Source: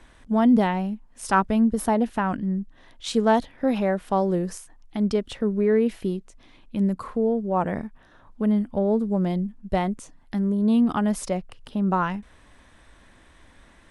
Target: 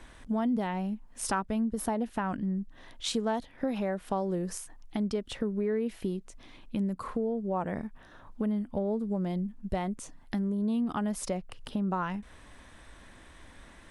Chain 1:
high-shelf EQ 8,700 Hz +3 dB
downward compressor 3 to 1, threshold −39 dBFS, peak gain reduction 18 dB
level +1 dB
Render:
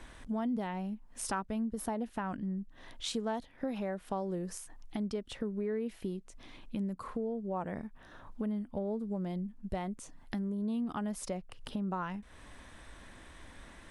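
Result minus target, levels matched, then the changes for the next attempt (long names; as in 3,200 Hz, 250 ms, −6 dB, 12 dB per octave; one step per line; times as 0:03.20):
downward compressor: peak gain reduction +5 dB
change: downward compressor 3 to 1, threshold −31.5 dBFS, peak gain reduction 13 dB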